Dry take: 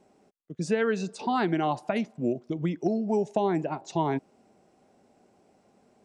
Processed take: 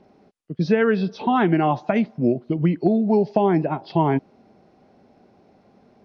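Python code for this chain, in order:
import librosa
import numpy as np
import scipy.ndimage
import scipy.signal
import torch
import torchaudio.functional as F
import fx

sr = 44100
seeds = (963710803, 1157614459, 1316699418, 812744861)

y = fx.freq_compress(x, sr, knee_hz=2500.0, ratio=1.5)
y = fx.bass_treble(y, sr, bass_db=4, treble_db=-6)
y = y * librosa.db_to_amplitude(6.5)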